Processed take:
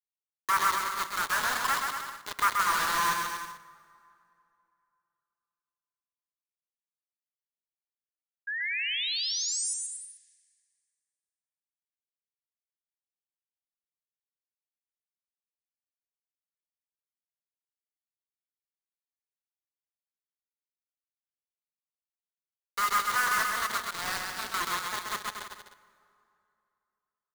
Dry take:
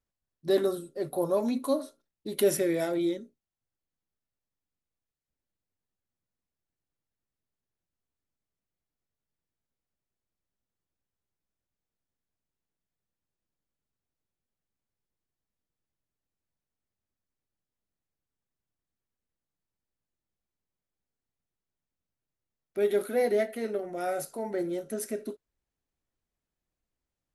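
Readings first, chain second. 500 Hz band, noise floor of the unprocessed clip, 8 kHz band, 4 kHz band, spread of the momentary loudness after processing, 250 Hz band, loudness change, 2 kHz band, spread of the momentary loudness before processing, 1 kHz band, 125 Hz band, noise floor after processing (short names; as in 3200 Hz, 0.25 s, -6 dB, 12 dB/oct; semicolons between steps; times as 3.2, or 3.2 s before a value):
-18.5 dB, under -85 dBFS, +10.0 dB, +13.5 dB, 13 LU, -17.5 dB, +1.0 dB, +14.5 dB, 12 LU, +12.5 dB, n/a, under -85 dBFS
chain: half-waves squared off; elliptic high-pass 960 Hz, stop band 50 dB; treble ducked by the level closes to 2400 Hz, closed at -32 dBFS; band shelf 4600 Hz -14 dB 2.3 oct; bit-crush 6-bit; painted sound rise, 8.47–9.74, 1600–10000 Hz -38 dBFS; on a send: bouncing-ball echo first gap 0.13 s, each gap 0.8×, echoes 5; on the sum: plate-style reverb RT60 2.8 s, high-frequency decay 0.65×, DRR 17.5 dB; gain +5 dB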